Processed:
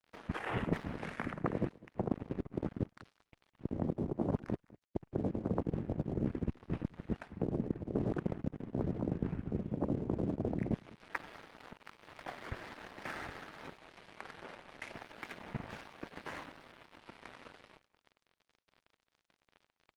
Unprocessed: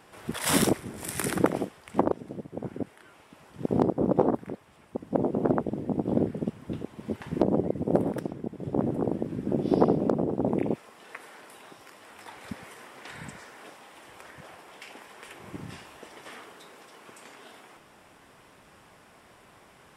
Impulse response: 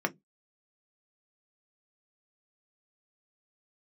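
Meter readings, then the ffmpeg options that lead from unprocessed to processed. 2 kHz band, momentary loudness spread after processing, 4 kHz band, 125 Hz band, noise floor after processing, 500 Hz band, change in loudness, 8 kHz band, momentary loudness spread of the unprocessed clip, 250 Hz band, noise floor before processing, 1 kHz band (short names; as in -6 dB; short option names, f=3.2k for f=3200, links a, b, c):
-5.5 dB, 17 LU, -14.0 dB, -4.0 dB, under -85 dBFS, -12.0 dB, -11.0 dB, n/a, 22 LU, -9.0 dB, -56 dBFS, -11.0 dB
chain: -af "highpass=f=280:t=q:w=0.5412,highpass=f=280:t=q:w=1.307,lowpass=f=2.8k:t=q:w=0.5176,lowpass=f=2.8k:t=q:w=0.7071,lowpass=f=2.8k:t=q:w=1.932,afreqshift=-160,aeval=exprs='sgn(val(0))*max(abs(val(0))-0.00376,0)':c=same,areverse,acompressor=threshold=-37dB:ratio=20,areverse,aecho=1:1:204:0.0891,volume=7dB" -ar 48000 -c:a libopus -b:a 32k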